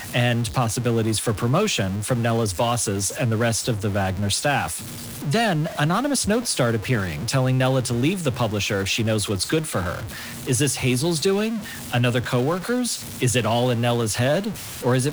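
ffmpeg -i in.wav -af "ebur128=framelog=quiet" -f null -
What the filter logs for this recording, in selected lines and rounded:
Integrated loudness:
  I:         -22.3 LUFS
  Threshold: -32.3 LUFS
Loudness range:
  LRA:         1.1 LU
  Threshold: -42.4 LUFS
  LRA low:   -23.0 LUFS
  LRA high:  -21.8 LUFS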